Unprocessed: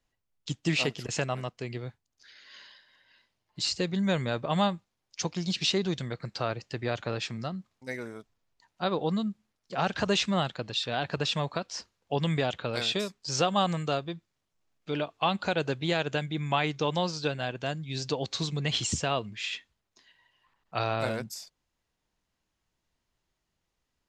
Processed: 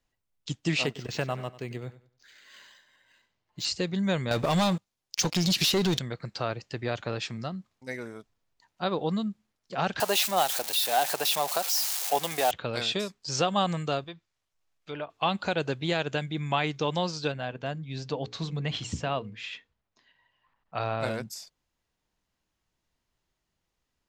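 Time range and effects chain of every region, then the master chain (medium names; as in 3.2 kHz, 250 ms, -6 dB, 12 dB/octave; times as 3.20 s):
0.86–3.65 s: feedback delay 96 ms, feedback 28%, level -16 dB + decimation joined by straight lines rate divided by 4×
4.31–5.99 s: waveshaping leveller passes 3 + treble shelf 3.8 kHz +7.5 dB + compression 5:1, threshold -22 dBFS
10.00–12.51 s: zero-crossing glitches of -20.5 dBFS + high-pass 390 Hz + peaking EQ 770 Hz +10.5 dB 0.5 oct
14.04–15.10 s: low-pass that closes with the level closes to 1.9 kHz, closed at -27.5 dBFS + peaking EQ 220 Hz -9.5 dB 2.3 oct
17.32–21.03 s: low-pass 2.1 kHz 6 dB/octave + peaking EQ 360 Hz -7 dB 0.22 oct + hum notches 60/120/180/240/300/360/420/480 Hz
whole clip: none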